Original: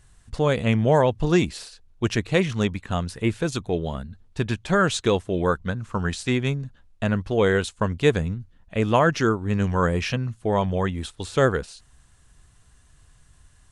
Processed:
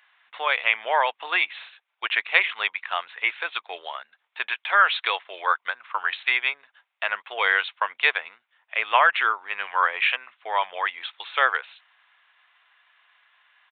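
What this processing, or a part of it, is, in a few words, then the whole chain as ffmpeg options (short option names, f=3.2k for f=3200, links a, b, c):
musical greeting card: -filter_complex "[0:a]aresample=8000,aresample=44100,highpass=f=840:w=0.5412,highpass=f=840:w=1.3066,equalizer=f=2.2k:t=o:w=0.48:g=7,asettb=1/sr,asplit=3[a][b][c];[a]atrim=end=4.494[d];[b]atrim=start=4.49:end=5.56,asetpts=PTS-STARTPTS,afade=t=in:d=0.004:c=qsin,afade=t=out:st=1.066:d=0.004:c=qsin,highpass=280[e];[c]atrim=start=5.556[f];[d][e]acrossfade=d=0.004:c1=hsin:c2=qsin[g];[g][f]acrossfade=d=0.004:c1=qsin:c2=hsin,volume=5dB"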